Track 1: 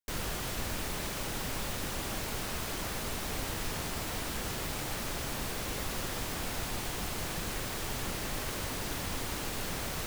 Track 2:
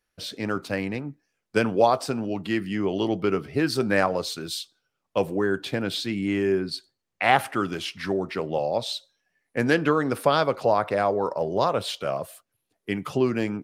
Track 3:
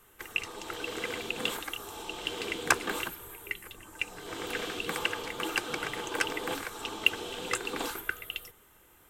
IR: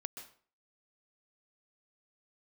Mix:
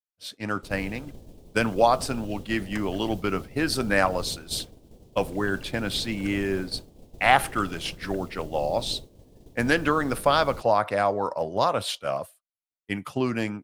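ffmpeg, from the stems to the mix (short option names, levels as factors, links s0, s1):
-filter_complex "[0:a]firequalizer=gain_entry='entry(470,0);entry(1400,-30);entry(3200,-16)':delay=0.05:min_phase=1,adelay=550,volume=1.12[s0];[1:a]equalizer=f=160:t=o:w=0.67:g=-5,equalizer=f=400:t=o:w=0.67:g=-7,equalizer=f=10000:t=o:w=0.67:g=5,volume=1.19,asplit=2[s1][s2];[2:a]adelay=50,volume=0.126[s3];[s2]apad=whole_len=403374[s4];[s3][s4]sidechaingate=range=0.0224:threshold=0.01:ratio=16:detection=peak[s5];[s0][s1][s5]amix=inputs=3:normalize=0,agate=range=0.0224:threshold=0.0447:ratio=3:detection=peak"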